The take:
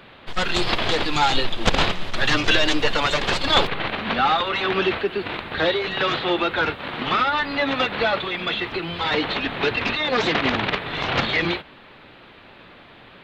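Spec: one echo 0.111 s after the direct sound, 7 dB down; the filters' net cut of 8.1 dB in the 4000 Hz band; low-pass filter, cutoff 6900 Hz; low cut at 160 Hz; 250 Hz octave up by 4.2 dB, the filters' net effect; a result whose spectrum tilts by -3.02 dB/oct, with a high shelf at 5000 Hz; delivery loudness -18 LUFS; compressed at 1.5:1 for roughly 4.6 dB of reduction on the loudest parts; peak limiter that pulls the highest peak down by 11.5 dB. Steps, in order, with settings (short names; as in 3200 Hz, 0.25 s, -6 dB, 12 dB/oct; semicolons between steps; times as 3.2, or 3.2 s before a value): HPF 160 Hz; LPF 6900 Hz; bell 250 Hz +6.5 dB; bell 4000 Hz -8 dB; high shelf 5000 Hz -6 dB; compressor 1.5:1, threshold -28 dBFS; limiter -22 dBFS; echo 0.111 s -7 dB; gain +12 dB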